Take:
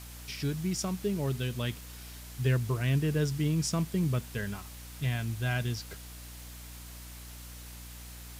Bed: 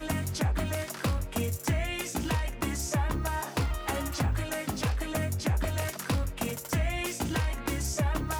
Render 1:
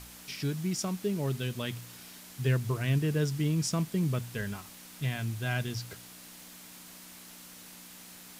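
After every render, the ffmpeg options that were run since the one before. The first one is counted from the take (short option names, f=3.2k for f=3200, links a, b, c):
-af "bandreject=f=60:t=h:w=4,bandreject=f=120:t=h:w=4"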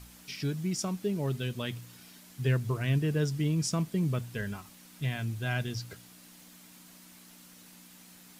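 -af "afftdn=nr=6:nf=-50"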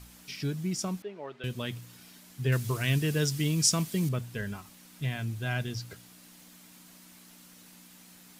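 -filter_complex "[0:a]asettb=1/sr,asplit=3[a][b][c];[a]atrim=end=1.024[d];[b]atrim=start=1.02:end=1.44,asetpts=PTS-STARTPTS,afade=t=in:d=0.004:c=qsin,afade=t=out:st=0.416:d=0.004:c=qsin,highpass=570,lowpass=2.3k[e];[c]atrim=start=1.436[f];[d][e]acrossfade=d=0.004:c1=hsin:c2=qsin[g];[g][f]acrossfade=d=0.004:c1=qsin:c2=hsin,asettb=1/sr,asplit=3[h][i][j];[h]atrim=end=2.524[k];[i]atrim=start=2.52:end=4.09,asetpts=PTS-STARTPTS,afade=t=in:d=0.004:c=qsin,afade=t=out:st=1.566:d=0.004:c=qsin,highshelf=f=2.1k:g=11.5[l];[j]atrim=start=4.086[m];[k][l]acrossfade=d=0.004:c1=hsin:c2=qsin[n];[n][m]acrossfade=d=0.004:c1=qsin:c2=hsin"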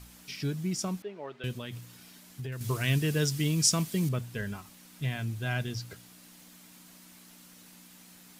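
-filter_complex "[0:a]asettb=1/sr,asplit=3[a][b][c];[a]atrim=end=1.574[d];[b]atrim=start=1.57:end=2.61,asetpts=PTS-STARTPTS,afade=t=in:d=0.004:c=qsin,afade=t=out:st=1.036:d=0.004:c=qsin,acompressor=threshold=-34dB:ratio=6:attack=3.2:release=140:knee=1:detection=peak[e];[c]atrim=start=2.606[f];[d][e]acrossfade=d=0.004:c1=hsin:c2=qsin[g];[g][f]acrossfade=d=0.004:c1=qsin:c2=hsin"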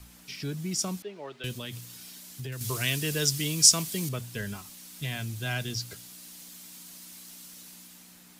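-filter_complex "[0:a]acrossover=split=330|460|3300[a][b][c][d];[a]alimiter=level_in=5.5dB:limit=-24dB:level=0:latency=1,volume=-5.5dB[e];[d]dynaudnorm=f=110:g=13:m=9dB[f];[e][b][c][f]amix=inputs=4:normalize=0"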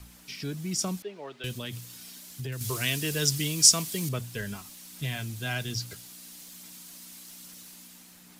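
-af "aphaser=in_gain=1:out_gain=1:delay=4.4:decay=0.21:speed=1.2:type=sinusoidal"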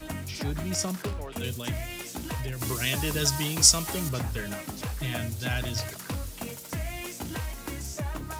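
-filter_complex "[1:a]volume=-5dB[a];[0:a][a]amix=inputs=2:normalize=0"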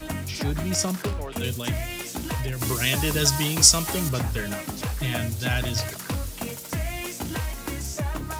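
-af "volume=4.5dB,alimiter=limit=-1dB:level=0:latency=1"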